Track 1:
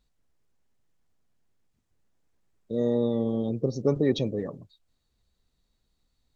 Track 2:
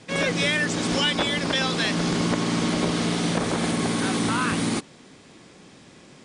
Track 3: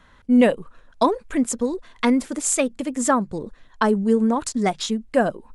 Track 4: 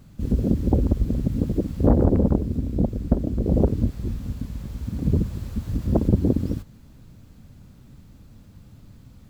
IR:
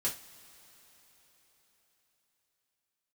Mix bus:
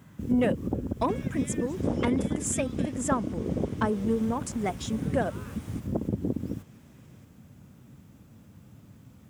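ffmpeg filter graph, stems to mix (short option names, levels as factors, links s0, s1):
-filter_complex "[0:a]adelay=1050,volume=0.112[s0];[1:a]acompressor=threshold=0.0282:ratio=6,adelay=1000,volume=0.211[s1];[2:a]asoftclip=type=tanh:threshold=0.398,volume=0.398[s2];[3:a]acompressor=threshold=0.0398:ratio=2,volume=0.891[s3];[s0][s1][s2][s3]amix=inputs=4:normalize=0,highpass=110,equalizer=f=4300:t=o:w=0.44:g=-8.5"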